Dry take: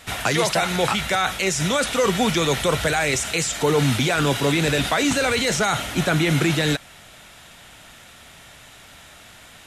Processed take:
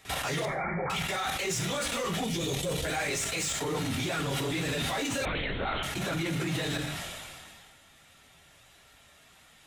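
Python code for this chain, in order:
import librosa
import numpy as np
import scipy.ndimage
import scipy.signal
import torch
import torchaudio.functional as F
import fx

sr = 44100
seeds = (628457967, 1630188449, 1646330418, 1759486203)

y = fx.phase_scramble(x, sr, seeds[0], window_ms=50)
y = fx.hum_notches(y, sr, base_hz=50, count=6)
y = fx.peak_eq(y, sr, hz=1300.0, db=-14.5, octaves=1.5, at=(2.24, 2.85))
y = fx.notch(y, sr, hz=1500.0, q=20.0)
y = fx.level_steps(y, sr, step_db=14)
y = np.clip(y, -10.0 ** (-25.0 / 20.0), 10.0 ** (-25.0 / 20.0))
y = fx.brickwall_lowpass(y, sr, high_hz=2400.0, at=(0.45, 0.9))
y = fx.rev_gated(y, sr, seeds[1], gate_ms=190, shape='falling', drr_db=10.0)
y = fx.lpc_vocoder(y, sr, seeds[2], excitation='whisper', order=10, at=(5.25, 5.83))
y = fx.sustainer(y, sr, db_per_s=26.0)
y = F.gain(torch.from_numpy(y), -2.5).numpy()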